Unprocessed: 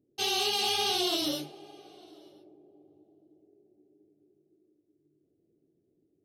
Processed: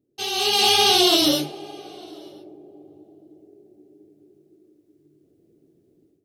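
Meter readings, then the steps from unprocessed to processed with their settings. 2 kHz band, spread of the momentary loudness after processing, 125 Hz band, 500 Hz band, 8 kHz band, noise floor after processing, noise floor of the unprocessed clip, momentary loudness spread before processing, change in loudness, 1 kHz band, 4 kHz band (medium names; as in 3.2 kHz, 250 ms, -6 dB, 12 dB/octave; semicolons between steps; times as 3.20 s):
+10.0 dB, 11 LU, +11.5 dB, +11.0 dB, +10.0 dB, -64 dBFS, -75 dBFS, 9 LU, +10.5 dB, +10.5 dB, +10.5 dB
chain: level rider gain up to 12.5 dB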